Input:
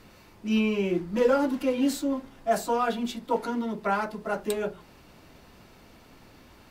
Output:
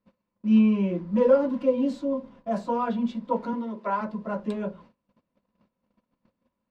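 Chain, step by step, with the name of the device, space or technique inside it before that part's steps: 3.53–4.01 HPF 270 Hz 24 dB/oct; inside a cardboard box (LPF 4200 Hz 12 dB/oct; small resonant body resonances 210/530/990 Hz, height 15 dB, ringing for 45 ms); gate -41 dBFS, range -27 dB; 1.64–2.55 dynamic EQ 1600 Hz, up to -6 dB, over -36 dBFS, Q 1.2; gain -8 dB

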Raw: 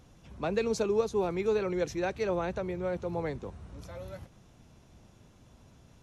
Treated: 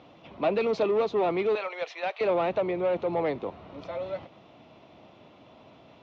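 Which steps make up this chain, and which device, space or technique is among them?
1.55–2.21 Bessel high-pass 920 Hz, order 8; overdrive pedal into a guitar cabinet (overdrive pedal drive 20 dB, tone 3900 Hz, clips at -16.5 dBFS; speaker cabinet 92–3800 Hz, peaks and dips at 300 Hz +5 dB, 640 Hz +6 dB, 1600 Hz -10 dB); gain -2 dB

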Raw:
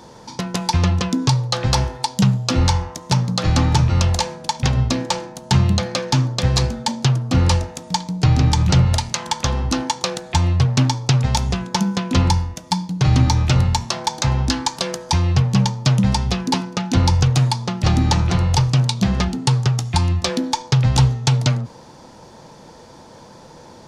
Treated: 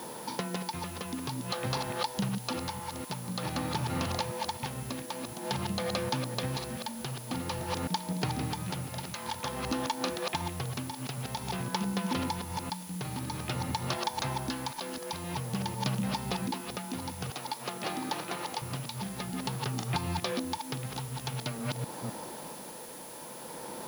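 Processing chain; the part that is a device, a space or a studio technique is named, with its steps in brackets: reverse delay 0.254 s, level -5 dB; medium wave at night (BPF 200–3900 Hz; compressor, threshold -30 dBFS, peak gain reduction 14 dB; tremolo 0.5 Hz, depth 53%; whine 10000 Hz -50 dBFS; white noise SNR 15 dB); 17.3–18.62 HPF 320 Hz 12 dB/oct; gain +1 dB

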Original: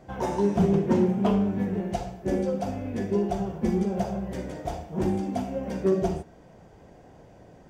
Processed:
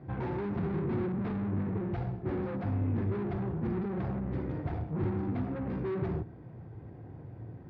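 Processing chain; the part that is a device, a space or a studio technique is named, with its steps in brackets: guitar amplifier (tube stage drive 36 dB, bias 0.65; tone controls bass +14 dB, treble -15 dB; speaker cabinet 100–4300 Hz, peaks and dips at 110 Hz +8 dB, 190 Hz -7 dB, 340 Hz +5 dB, 610 Hz -6 dB, 3000 Hz -6 dB)

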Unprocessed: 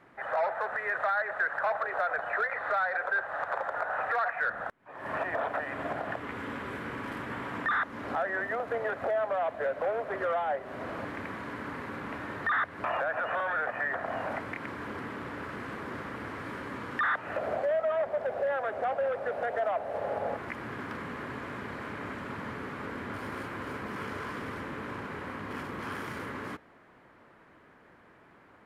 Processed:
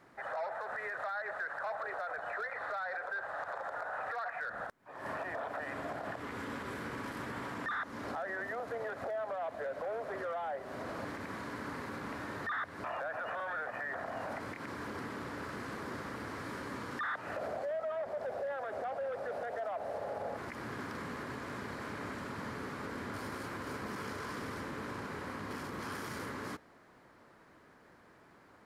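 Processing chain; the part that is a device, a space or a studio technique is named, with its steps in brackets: over-bright horn tweeter (resonant high shelf 3700 Hz +6.5 dB, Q 1.5; limiter -28.5 dBFS, peak gain reduction 9.5 dB); gain -2.5 dB

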